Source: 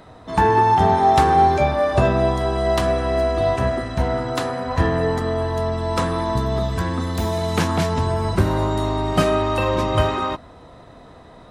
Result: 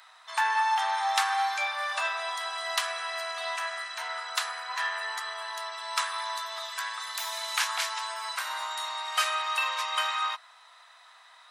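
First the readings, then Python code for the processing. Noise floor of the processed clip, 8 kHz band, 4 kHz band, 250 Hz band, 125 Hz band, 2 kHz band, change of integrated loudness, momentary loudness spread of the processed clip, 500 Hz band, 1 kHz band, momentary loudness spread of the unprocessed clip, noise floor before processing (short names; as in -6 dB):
-55 dBFS, +1.5 dB, +1.0 dB, under -40 dB, under -40 dB, -1.0 dB, -10.0 dB, 8 LU, -22.5 dB, -10.0 dB, 8 LU, -44 dBFS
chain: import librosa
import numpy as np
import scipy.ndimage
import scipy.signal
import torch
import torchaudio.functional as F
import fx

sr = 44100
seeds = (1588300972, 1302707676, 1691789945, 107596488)

y = scipy.signal.sosfilt(scipy.signal.bessel(6, 1600.0, 'highpass', norm='mag', fs=sr, output='sos'), x)
y = y * 10.0 ** (1.5 / 20.0)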